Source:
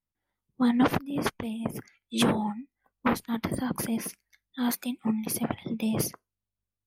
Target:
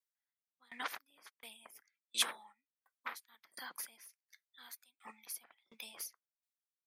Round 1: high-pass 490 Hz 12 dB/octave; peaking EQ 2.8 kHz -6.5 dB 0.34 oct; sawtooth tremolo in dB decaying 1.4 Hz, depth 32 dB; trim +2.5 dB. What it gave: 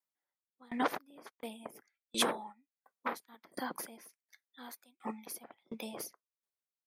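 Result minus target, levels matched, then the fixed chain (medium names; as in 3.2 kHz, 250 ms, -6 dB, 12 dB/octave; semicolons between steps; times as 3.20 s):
500 Hz band +14.5 dB
high-pass 1.7 kHz 12 dB/octave; peaking EQ 2.8 kHz -6.5 dB 0.34 oct; sawtooth tremolo in dB decaying 1.4 Hz, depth 32 dB; trim +2.5 dB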